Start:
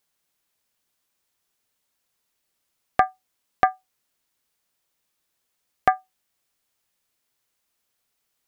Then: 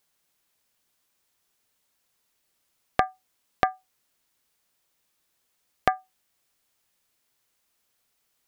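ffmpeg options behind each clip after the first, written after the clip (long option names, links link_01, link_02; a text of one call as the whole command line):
ffmpeg -i in.wav -af "acompressor=threshold=-21dB:ratio=6,volume=2.5dB" out.wav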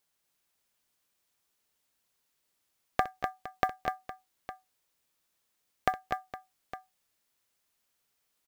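ffmpeg -i in.wav -filter_complex "[0:a]acrusher=bits=7:mode=log:mix=0:aa=0.000001,asplit=2[link_01][link_02];[link_02]aecho=0:1:63|233|248|462|859:0.158|0.133|0.531|0.168|0.178[link_03];[link_01][link_03]amix=inputs=2:normalize=0,volume=-5.5dB" out.wav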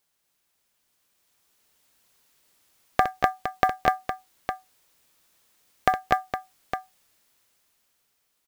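ffmpeg -i in.wav -af "alimiter=limit=-14dB:level=0:latency=1:release=73,dynaudnorm=framelen=410:gausssize=7:maxgain=9dB,volume=4dB" out.wav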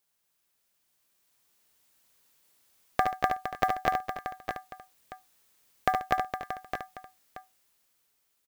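ffmpeg -i in.wav -filter_complex "[0:a]highshelf=frequency=9300:gain=4,asplit=2[link_01][link_02];[link_02]aecho=0:1:72|308|629:0.473|0.133|0.299[link_03];[link_01][link_03]amix=inputs=2:normalize=0,volume=-5dB" out.wav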